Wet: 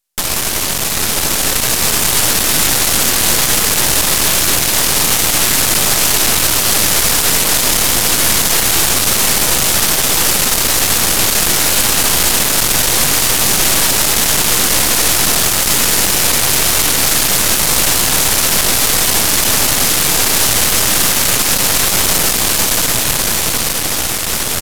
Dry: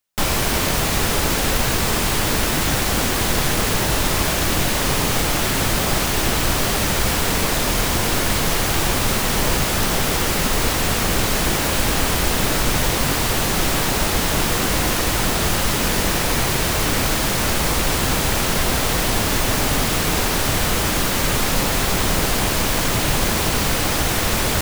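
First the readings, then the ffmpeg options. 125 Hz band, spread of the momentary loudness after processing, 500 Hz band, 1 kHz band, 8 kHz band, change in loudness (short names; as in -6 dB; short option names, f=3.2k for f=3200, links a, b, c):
-2.0 dB, 3 LU, +1.5 dB, +2.5 dB, +12.0 dB, +8.0 dB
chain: -af "lowshelf=f=76:g=-6.5,aresample=32000,aresample=44100,dynaudnorm=f=110:g=31:m=11.5dB,apsyclip=11dB,aeval=exprs='max(val(0),0)':c=same,equalizer=f=12k:t=o:w=2.5:g=9.5,volume=-8dB"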